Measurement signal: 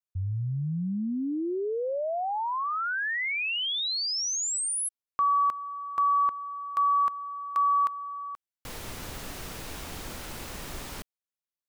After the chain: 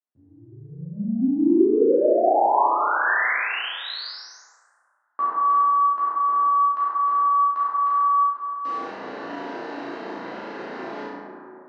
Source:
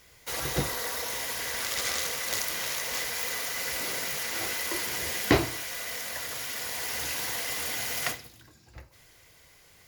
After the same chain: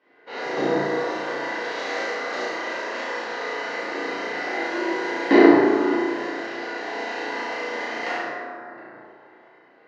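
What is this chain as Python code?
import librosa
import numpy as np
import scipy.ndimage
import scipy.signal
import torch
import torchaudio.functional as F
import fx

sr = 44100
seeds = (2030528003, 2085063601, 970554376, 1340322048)

y = fx.transient(x, sr, attack_db=4, sustain_db=-3)
y = fx.cabinet(y, sr, low_hz=240.0, low_slope=24, high_hz=3900.0, hz=(340.0, 1300.0, 2300.0, 3400.0), db=(5, -4, -8, -10))
y = fx.room_flutter(y, sr, wall_m=6.0, rt60_s=0.74)
y = fx.rev_plate(y, sr, seeds[0], rt60_s=2.5, hf_ratio=0.25, predelay_ms=0, drr_db=-10.0)
y = fx.env_lowpass(y, sr, base_hz=2400.0, full_db=-19.0)
y = F.gain(torch.from_numpy(y), -4.0).numpy()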